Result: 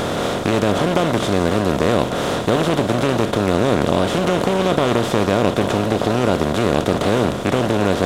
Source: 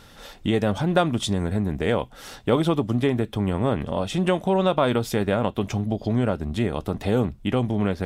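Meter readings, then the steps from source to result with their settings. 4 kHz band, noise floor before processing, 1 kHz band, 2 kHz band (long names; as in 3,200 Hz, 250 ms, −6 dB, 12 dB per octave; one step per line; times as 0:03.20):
+8.0 dB, −48 dBFS, +8.0 dB, +8.5 dB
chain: compressor on every frequency bin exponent 0.2
highs frequency-modulated by the lows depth 0.32 ms
level −3.5 dB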